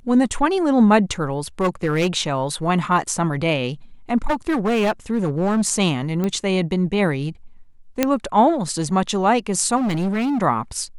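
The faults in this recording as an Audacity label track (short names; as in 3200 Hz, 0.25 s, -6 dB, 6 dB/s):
1.610000	2.170000	clipped -14.5 dBFS
4.250000	5.680000	clipped -15 dBFS
6.240000	6.240000	pop -12 dBFS
8.030000	8.030000	pop -2 dBFS
9.760000	10.420000	clipped -18.5 dBFS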